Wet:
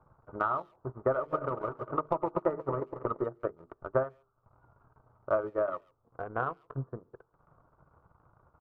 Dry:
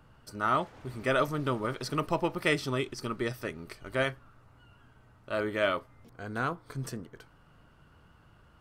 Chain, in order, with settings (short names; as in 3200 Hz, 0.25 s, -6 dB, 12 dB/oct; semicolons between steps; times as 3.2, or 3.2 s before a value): 0.94–3.24 regenerating reverse delay 0.114 s, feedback 79%, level -11 dB; steep low-pass 1300 Hz 48 dB/oct; transient shaper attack 0 dB, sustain -5 dB; bell 230 Hz -9.5 dB 0.87 oct; notches 50/100/150/200/250/300/350/400/450 Hz; limiter -25 dBFS, peak gain reduction 8.5 dB; low shelf 87 Hz -10.5 dB; speakerphone echo 0.14 s, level -19 dB; transient shaper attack +11 dB, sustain -9 dB